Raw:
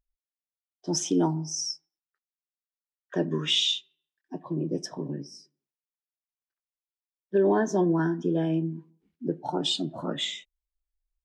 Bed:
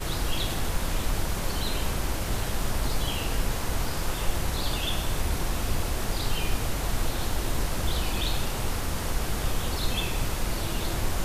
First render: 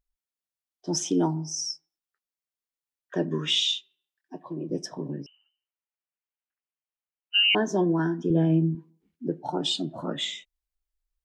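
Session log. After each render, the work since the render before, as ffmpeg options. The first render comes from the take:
-filter_complex "[0:a]asettb=1/sr,asplit=3[a][b][c];[a]atrim=end=3.604[d];[b]atrim=start=3.6:end=4.7,asetpts=PTS-STARTPTS,afade=t=in:d=0.004:c=qsin,afade=t=out:st=1.096:d=0.004:c=qsin,lowshelf=f=210:g=-11[e];[c]atrim=start=4.696[f];[d][e]acrossfade=d=0.004:c1=hsin:c2=qsin[g];[g][f]acrossfade=d=0.004:c1=qsin:c2=hsin,asettb=1/sr,asplit=3[h][i][j];[h]atrim=end=5.264[k];[i]atrim=start=5.26:end=7.55,asetpts=PTS-STARTPTS,afade=t=in:d=0.004:c=qsin,afade=t=out:st=2.286:d=0.004:c=qsin,lowpass=f=2.7k:t=q:w=0.5098,lowpass=f=2.7k:t=q:w=0.6013,lowpass=f=2.7k:t=q:w=0.9,lowpass=f=2.7k:t=q:w=2.563,afreqshift=-3200[l];[j]atrim=start=7.546[m];[k][l]acrossfade=d=0.004:c1=hsin:c2=qsin[n];[n][m]acrossfade=d=0.004:c1=qsin:c2=hsin,asettb=1/sr,asplit=3[o][p][q];[o]atrim=end=8.304[r];[p]atrim=start=8.3:end=8.75,asetpts=PTS-STARTPTS,afade=t=in:d=0.004:c=qsin,afade=t=out:st=0.446:d=0.004:c=qsin,aemphasis=mode=reproduction:type=bsi[s];[q]atrim=start=8.746[t];[r][s]acrossfade=d=0.004:c1=hsin:c2=qsin[u];[u][t]acrossfade=d=0.004:c1=qsin:c2=hsin"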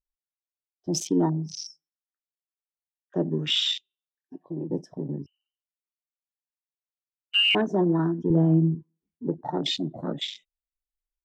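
-af "afwtdn=0.0224,lowshelf=f=120:g=7.5"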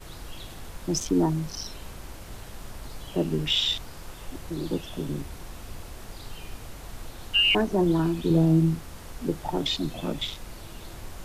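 -filter_complex "[1:a]volume=-12.5dB[a];[0:a][a]amix=inputs=2:normalize=0"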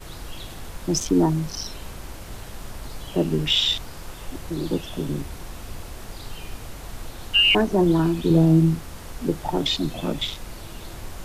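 -af "volume=4dB"

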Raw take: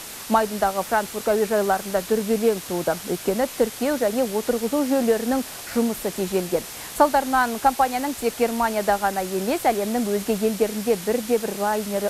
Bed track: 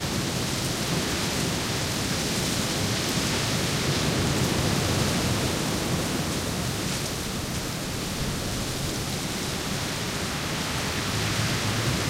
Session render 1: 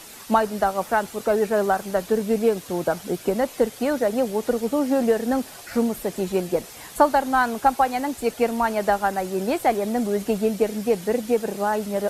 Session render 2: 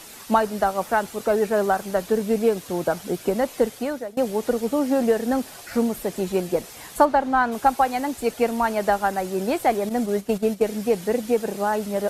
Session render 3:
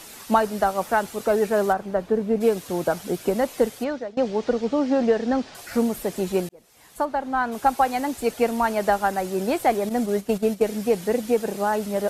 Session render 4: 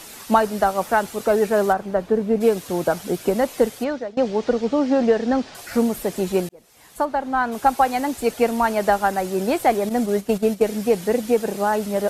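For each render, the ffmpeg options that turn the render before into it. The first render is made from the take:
-af "afftdn=nr=8:nf=-37"
-filter_complex "[0:a]asplit=3[a][b][c];[a]afade=t=out:st=7.04:d=0.02[d];[b]aemphasis=mode=reproduction:type=75fm,afade=t=in:st=7.04:d=0.02,afade=t=out:st=7.51:d=0.02[e];[c]afade=t=in:st=7.51:d=0.02[f];[d][e][f]amix=inputs=3:normalize=0,asettb=1/sr,asplit=3[g][h][i];[g]atrim=end=9.894[j];[h]atrim=start=9.89:end=10.64,asetpts=PTS-STARTPTS,afade=t=in:d=0.004:c=qsin,afade=t=out:st=0.746:d=0.004:c=qsin,agate=range=-10dB:threshold=-27dB:ratio=16:release=100:detection=peak[k];[i]atrim=start=10.636[l];[j][k]acrossfade=d=0.004:c1=hsin:c2=qsin[m];[m][l]acrossfade=d=0.004:c1=qsin:c2=hsin,asplit=2[n][o];[n]atrim=end=4.17,asetpts=PTS-STARTPTS,afade=t=out:st=3.69:d=0.48:silence=0.0707946[p];[o]atrim=start=4.17,asetpts=PTS-STARTPTS,afade=t=in:d=0.004:c=hsin:silence=0.0707946[q];[p][q]concat=n=2:v=0:a=1"
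-filter_complex "[0:a]asplit=3[a][b][c];[a]afade=t=out:st=1.72:d=0.02[d];[b]lowpass=f=1.2k:p=1,afade=t=in:st=1.72:d=0.02,afade=t=out:st=2.4:d=0.02[e];[c]afade=t=in:st=2.4:d=0.02[f];[d][e][f]amix=inputs=3:normalize=0,asettb=1/sr,asplit=3[g][h][i];[g]atrim=end=3.844[j];[h]atrim=start=3.84:end=5.55,asetpts=PTS-STARTPTS,afade=t=in:d=0.004:c=qsin,afade=t=out:st=1.706:d=0.004:c=qsin,lowpass=f=5.7k:w=0.5412,lowpass=f=5.7k:w=1.3066[k];[i]atrim=start=5.546[l];[j][k]acrossfade=d=0.004:c1=hsin:c2=qsin[m];[m][l]acrossfade=d=0.004:c1=qsin:c2=hsin,asplit=2[n][o];[n]atrim=end=6.49,asetpts=PTS-STARTPTS,afade=t=out:st=6.486:d=0.004:c=hsin[p];[o]atrim=start=6.49,asetpts=PTS-STARTPTS,afade=t=in:d=1.38[q];[p][q]concat=n=2:v=0:a=1"
-af "volume=2.5dB"

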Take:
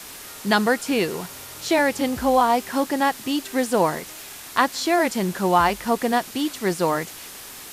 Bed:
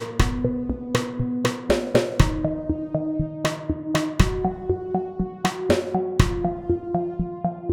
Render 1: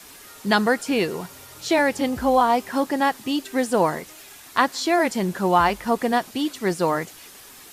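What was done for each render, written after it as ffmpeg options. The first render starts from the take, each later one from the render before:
-af "afftdn=nr=7:nf=-39"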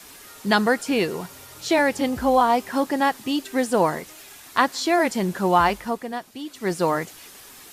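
-filter_complex "[0:a]asplit=3[a][b][c];[a]atrim=end=6.03,asetpts=PTS-STARTPTS,afade=t=out:st=5.72:d=0.31:silence=0.334965[d];[b]atrim=start=6.03:end=6.46,asetpts=PTS-STARTPTS,volume=-9.5dB[e];[c]atrim=start=6.46,asetpts=PTS-STARTPTS,afade=t=in:d=0.31:silence=0.334965[f];[d][e][f]concat=n=3:v=0:a=1"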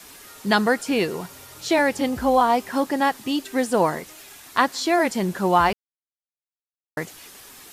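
-filter_complex "[0:a]asplit=3[a][b][c];[a]atrim=end=5.73,asetpts=PTS-STARTPTS,afade=t=out:st=5.726:d=0.004:c=hsin[d];[b]atrim=start=5.73:end=6.97,asetpts=PTS-STARTPTS,volume=0[e];[c]atrim=start=6.97,asetpts=PTS-STARTPTS,afade=t=in:d=0.004:c=hsin[f];[d][e][f]concat=n=3:v=0:a=1"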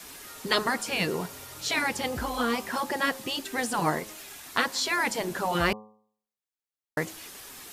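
-af "afftfilt=real='re*lt(hypot(re,im),0.501)':imag='im*lt(hypot(re,im),0.501)':win_size=1024:overlap=0.75,bandreject=f=107.1:t=h:w=4,bandreject=f=214.2:t=h:w=4,bandreject=f=321.3:t=h:w=4,bandreject=f=428.4:t=h:w=4,bandreject=f=535.5:t=h:w=4,bandreject=f=642.6:t=h:w=4,bandreject=f=749.7:t=h:w=4,bandreject=f=856.8:t=h:w=4,bandreject=f=963.9:t=h:w=4,bandreject=f=1.071k:t=h:w=4,bandreject=f=1.1781k:t=h:w=4"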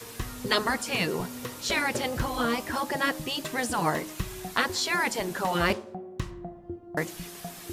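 -filter_complex "[1:a]volume=-15.5dB[a];[0:a][a]amix=inputs=2:normalize=0"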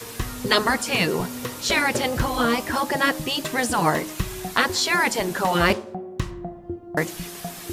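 -af "volume=6dB,alimiter=limit=-3dB:level=0:latency=1"

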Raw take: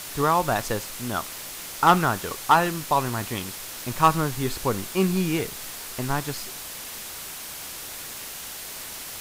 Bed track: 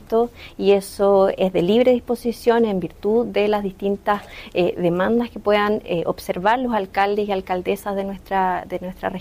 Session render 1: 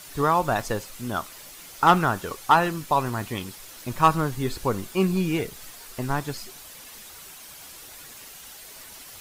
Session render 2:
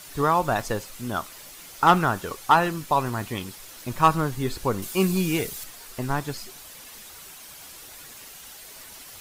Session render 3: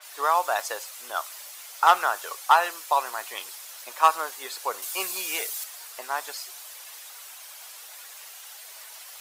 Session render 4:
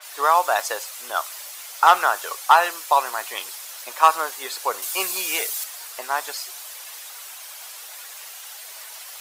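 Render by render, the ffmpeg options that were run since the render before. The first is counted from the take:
-af "afftdn=nr=9:nf=-37"
-filter_complex "[0:a]asettb=1/sr,asplit=3[a][b][c];[a]atrim=end=4.824[d];[b]atrim=start=4.82:end=5.64,asetpts=PTS-STARTPTS,afade=t=in:d=0.004:c=qsin,afade=t=out:st=0.816:d=0.004:c=qsin,highshelf=f=4.1k:g=9.5[e];[c]atrim=start=5.636[f];[d][e]acrossfade=d=0.004:c1=hsin:c2=qsin[g];[g][f]acrossfade=d=0.004:c1=qsin:c2=hsin"
-af "highpass=f=590:w=0.5412,highpass=f=590:w=1.3066,adynamicequalizer=threshold=0.0112:dfrequency=4400:dqfactor=0.7:tfrequency=4400:tqfactor=0.7:attack=5:release=100:ratio=0.375:range=2:mode=boostabove:tftype=highshelf"
-af "volume=5dB,alimiter=limit=-1dB:level=0:latency=1"

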